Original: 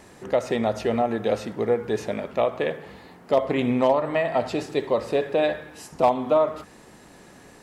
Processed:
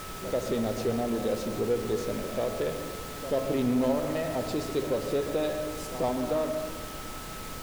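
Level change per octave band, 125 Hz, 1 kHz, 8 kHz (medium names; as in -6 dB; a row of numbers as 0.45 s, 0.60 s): -1.5 dB, -9.5 dB, no reading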